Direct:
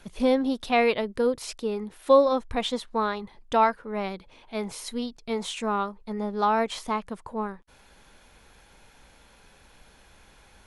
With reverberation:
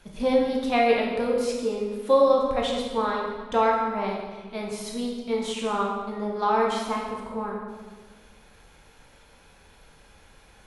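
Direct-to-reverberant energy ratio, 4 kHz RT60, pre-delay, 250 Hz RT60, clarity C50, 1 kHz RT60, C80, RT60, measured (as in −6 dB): −2.0 dB, 1.1 s, 10 ms, 1.8 s, 1.5 dB, 1.4 s, 4.0 dB, 1.5 s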